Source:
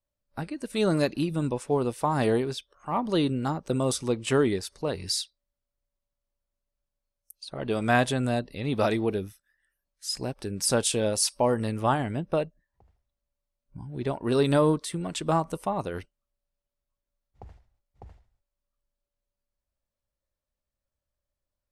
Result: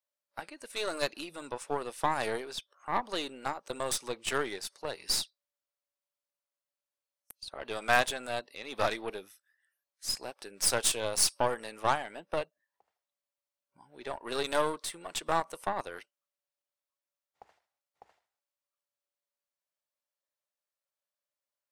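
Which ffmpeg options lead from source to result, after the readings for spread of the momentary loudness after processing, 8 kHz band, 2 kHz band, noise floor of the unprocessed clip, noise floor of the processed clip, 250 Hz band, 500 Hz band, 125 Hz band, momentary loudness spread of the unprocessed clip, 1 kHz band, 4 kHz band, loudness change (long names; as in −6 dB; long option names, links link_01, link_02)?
16 LU, −1.0 dB, 0.0 dB, below −85 dBFS, below −85 dBFS, −16.0 dB, −8.0 dB, −18.5 dB, 13 LU, −2.5 dB, −1.0 dB, −5.5 dB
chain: -af "highpass=690,aeval=exprs='0.335*(cos(1*acos(clip(val(0)/0.335,-1,1)))-cos(1*PI/2))+0.0237*(cos(6*acos(clip(val(0)/0.335,-1,1)))-cos(6*PI/2))+0.00944*(cos(7*acos(clip(val(0)/0.335,-1,1)))-cos(7*PI/2))+0.0422*(cos(8*acos(clip(val(0)/0.335,-1,1)))-cos(8*PI/2))':channel_layout=same"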